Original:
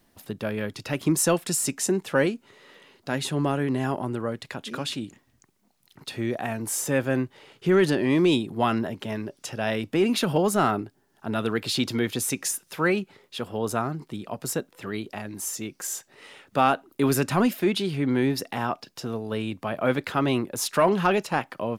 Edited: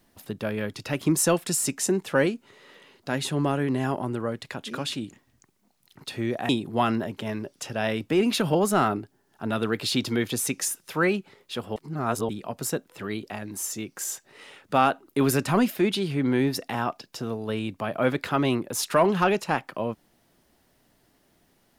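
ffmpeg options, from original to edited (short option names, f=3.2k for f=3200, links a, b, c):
-filter_complex "[0:a]asplit=4[a][b][c][d];[a]atrim=end=6.492[e];[b]atrim=start=8.318:end=13.592[f];[c]atrim=start=13.588:end=14.122,asetpts=PTS-STARTPTS,areverse[g];[d]atrim=start=14.118[h];[e][f]acrossfade=d=0.004:c1=hsin:c2=hsin[i];[i][g]acrossfade=d=0.004:c1=hsin:c2=hsin[j];[j][h]acrossfade=d=0.004:c1=hsin:c2=hsin"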